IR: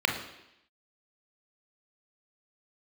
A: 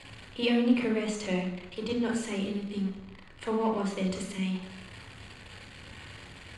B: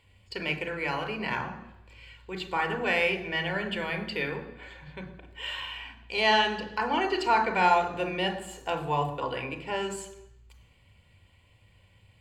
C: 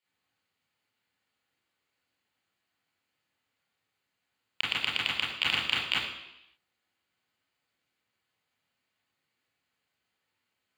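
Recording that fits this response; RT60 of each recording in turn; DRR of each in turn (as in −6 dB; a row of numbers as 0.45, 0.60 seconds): A; 0.85, 0.85, 0.85 seconds; 2.0, 6.5, −6.0 decibels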